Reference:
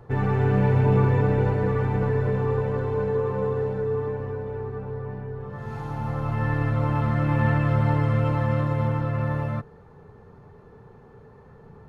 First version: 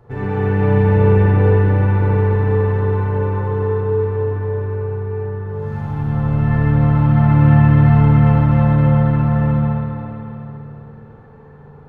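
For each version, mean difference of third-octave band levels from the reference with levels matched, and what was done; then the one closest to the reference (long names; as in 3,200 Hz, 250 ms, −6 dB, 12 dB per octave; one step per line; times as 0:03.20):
4.5 dB: spring reverb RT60 3.4 s, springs 41/55 ms, chirp 40 ms, DRR −7 dB
level −2.5 dB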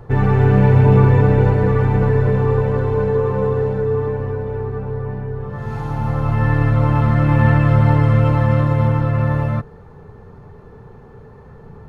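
1.0 dB: low-shelf EQ 78 Hz +7.5 dB
level +6.5 dB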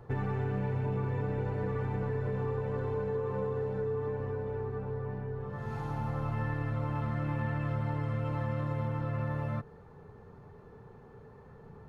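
2.5 dB: downward compressor, threshold −26 dBFS, peak gain reduction 10.5 dB
level −3.5 dB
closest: second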